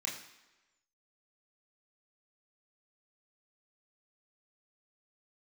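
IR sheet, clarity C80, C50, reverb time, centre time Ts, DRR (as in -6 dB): 9.5 dB, 7.0 dB, 1.1 s, 36 ms, -4.0 dB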